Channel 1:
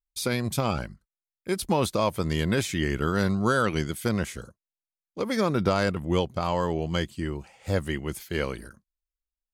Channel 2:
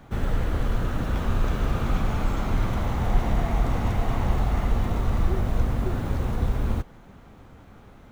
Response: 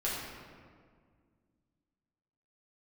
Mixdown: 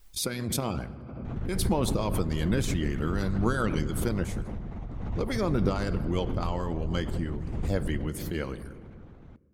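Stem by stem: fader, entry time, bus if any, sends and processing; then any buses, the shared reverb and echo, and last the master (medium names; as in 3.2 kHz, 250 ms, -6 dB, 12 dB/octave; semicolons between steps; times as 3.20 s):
-7.0 dB, 0.00 s, send -13.5 dB, none
-6.0 dB, 1.25 s, no send, Bessel low-pass 4.7 kHz; compression 3:1, threshold -36 dBFS, peak gain reduction 16 dB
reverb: on, RT60 1.9 s, pre-delay 5 ms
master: bass shelf 350 Hz +10.5 dB; harmonic-percussive split harmonic -12 dB; swell ahead of each attack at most 35 dB/s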